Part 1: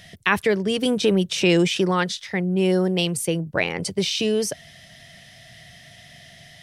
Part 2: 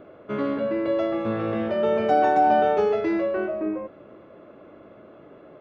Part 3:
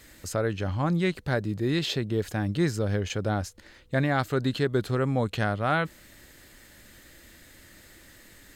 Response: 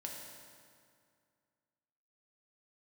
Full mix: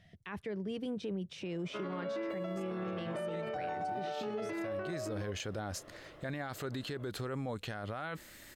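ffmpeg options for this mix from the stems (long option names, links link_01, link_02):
-filter_complex "[0:a]lowpass=frequency=1800:poles=1,lowshelf=frequency=260:gain=5.5,volume=-16dB,asplit=2[link_01][link_02];[1:a]acompressor=threshold=-23dB:ratio=3,highpass=frequency=620:poles=1,adelay=1450,volume=-4dB[link_03];[2:a]lowshelf=frequency=240:gain=-6.5,adelay=2300,volume=-0.5dB[link_04];[link_02]apad=whole_len=478656[link_05];[link_04][link_05]sidechaincompress=threshold=-50dB:ratio=8:attack=42:release=803[link_06];[link_01][link_03][link_06]amix=inputs=3:normalize=0,alimiter=level_in=6.5dB:limit=-24dB:level=0:latency=1:release=52,volume=-6.5dB"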